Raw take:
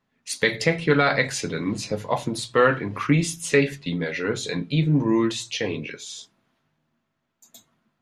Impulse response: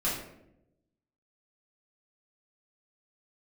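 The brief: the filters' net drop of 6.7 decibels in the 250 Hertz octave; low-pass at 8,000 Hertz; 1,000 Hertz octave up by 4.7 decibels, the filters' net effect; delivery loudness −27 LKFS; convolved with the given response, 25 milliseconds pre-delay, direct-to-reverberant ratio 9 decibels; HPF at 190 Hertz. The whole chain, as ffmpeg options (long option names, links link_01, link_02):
-filter_complex "[0:a]highpass=190,lowpass=8000,equalizer=frequency=250:width_type=o:gain=-8,equalizer=frequency=1000:width_type=o:gain=7,asplit=2[link_01][link_02];[1:a]atrim=start_sample=2205,adelay=25[link_03];[link_02][link_03]afir=irnorm=-1:irlink=0,volume=-17dB[link_04];[link_01][link_04]amix=inputs=2:normalize=0,volume=-3.5dB"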